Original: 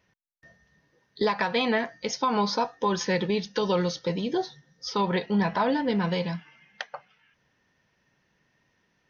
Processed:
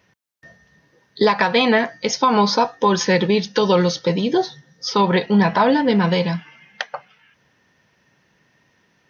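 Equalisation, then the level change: HPF 71 Hz; +9.0 dB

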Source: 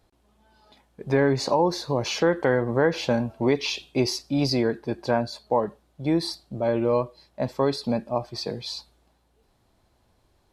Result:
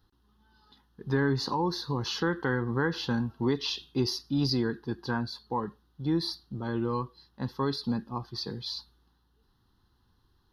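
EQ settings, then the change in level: fixed phaser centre 2300 Hz, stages 6; -1.5 dB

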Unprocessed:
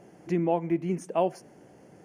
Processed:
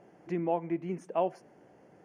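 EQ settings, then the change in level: low shelf 440 Hz -8.5 dB; high shelf 2800 Hz -10 dB; high shelf 7100 Hz -7 dB; 0.0 dB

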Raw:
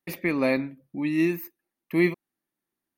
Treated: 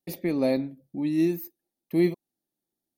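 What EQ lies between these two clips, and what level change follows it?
band shelf 1700 Hz -11.5 dB; notch 1000 Hz, Q 14; 0.0 dB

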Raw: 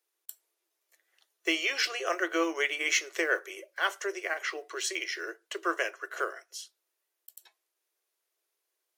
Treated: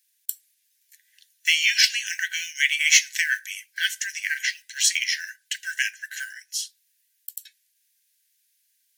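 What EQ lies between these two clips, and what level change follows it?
brick-wall FIR band-stop 180–1500 Hz; high shelf 2400 Hz +11.5 dB; +3.5 dB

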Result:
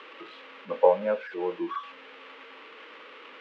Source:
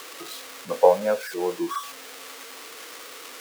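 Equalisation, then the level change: elliptic band-pass 190–2900 Hz, stop band 80 dB; Butterworth band-stop 710 Hz, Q 6.7; -3.0 dB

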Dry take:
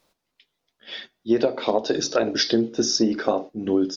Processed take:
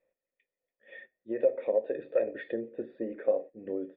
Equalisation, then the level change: vocal tract filter e; 0.0 dB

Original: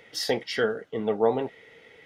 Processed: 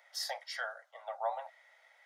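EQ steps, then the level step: steep high-pass 580 Hz 96 dB/oct; bell 2800 Hz -12 dB 0.75 oct; -5.0 dB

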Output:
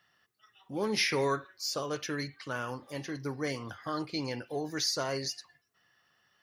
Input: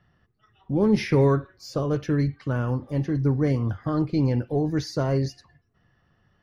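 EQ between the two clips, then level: HPF 1200 Hz 6 dB/oct; high shelf 3000 Hz +10 dB; 0.0 dB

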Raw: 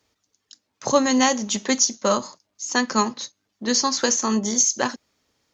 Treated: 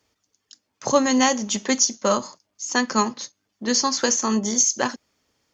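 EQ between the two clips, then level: notch 3900 Hz, Q 14; 0.0 dB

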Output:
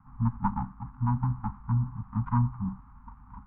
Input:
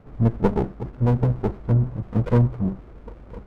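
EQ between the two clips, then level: Chebyshev band-stop 260–830 Hz, order 4; synth low-pass 1100 Hz, resonance Q 3.5; -7.5 dB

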